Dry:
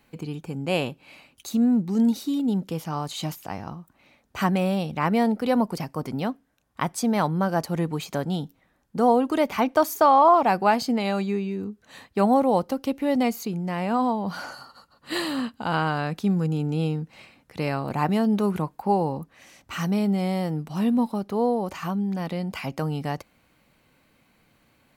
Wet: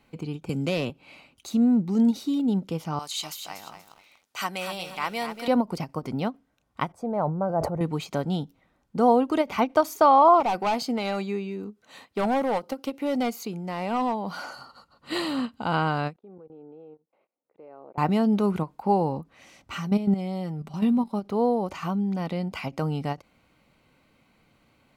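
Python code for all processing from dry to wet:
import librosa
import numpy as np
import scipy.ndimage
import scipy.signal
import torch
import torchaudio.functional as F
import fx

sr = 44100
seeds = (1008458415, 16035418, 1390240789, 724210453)

y = fx.chain(x, sr, fx.peak_eq(hz=850.0, db=-8.0, octaves=0.34),
    fx.overload_stage(gain_db=20.5),
    fx.band_squash(depth_pct=70), at=(0.49, 0.9))
y = fx.chain(y, sr, fx.highpass(hz=1400.0, slope=6),
    fx.high_shelf(hz=3600.0, db=9.5),
    fx.echo_crushed(ms=239, feedback_pct=35, bits=8, wet_db=-8.0), at=(2.99, 5.48))
y = fx.chain(y, sr, fx.curve_eq(hz=(120.0, 250.0, 600.0, 1800.0, 3300.0, 8800.0), db=(0, -10, 2, -14, -28, -20)),
    fx.sustainer(db_per_s=63.0), at=(6.92, 7.81))
y = fx.chain(y, sr, fx.highpass(hz=290.0, slope=6),
    fx.high_shelf(hz=11000.0, db=6.5),
    fx.clip_hard(threshold_db=-20.5), at=(10.4, 14.56))
y = fx.chain(y, sr, fx.ladder_bandpass(hz=560.0, resonance_pct=35),
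    fx.level_steps(step_db=23), at=(16.16, 17.98))
y = fx.chain(y, sr, fx.level_steps(step_db=11),
    fx.comb(ms=5.1, depth=0.49), at=(19.75, 21.14))
y = fx.high_shelf(y, sr, hz=8800.0, db=-10.5)
y = fx.notch(y, sr, hz=1700.0, q=7.9)
y = fx.end_taper(y, sr, db_per_s=410.0)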